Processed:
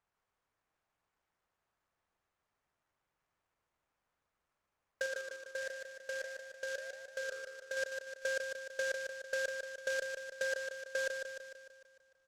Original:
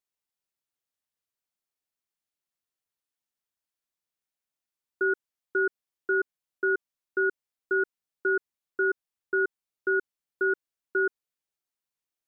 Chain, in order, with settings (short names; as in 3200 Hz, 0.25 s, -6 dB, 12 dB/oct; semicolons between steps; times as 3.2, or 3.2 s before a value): band inversion scrambler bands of 2000 Hz; LPF 1400 Hz 12 dB/oct; bell 260 Hz -8 dB 2.4 oct; negative-ratio compressor -40 dBFS, ratio -1; 5.06–7.77 flange 1.5 Hz, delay 6.7 ms, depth 6.7 ms, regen +89%; feedback echo 0.15 s, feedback 57%, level -5.5 dB; noise-modulated delay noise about 4200 Hz, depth 0.036 ms; gain +5.5 dB